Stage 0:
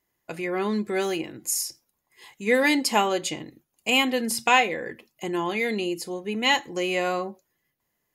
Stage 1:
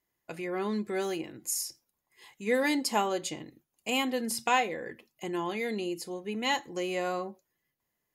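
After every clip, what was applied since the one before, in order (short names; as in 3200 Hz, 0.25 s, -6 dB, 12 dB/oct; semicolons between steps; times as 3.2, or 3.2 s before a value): dynamic EQ 2500 Hz, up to -5 dB, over -37 dBFS, Q 1.5; gain -5.5 dB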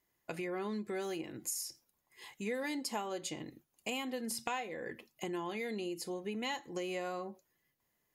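compressor 4:1, threshold -39 dBFS, peak gain reduction 15.5 dB; gain +2 dB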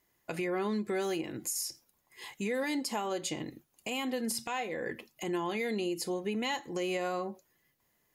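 limiter -30 dBFS, peak gain reduction 9 dB; gain +6 dB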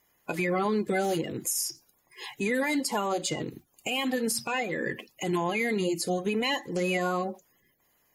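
bin magnitudes rounded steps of 30 dB; gain +6 dB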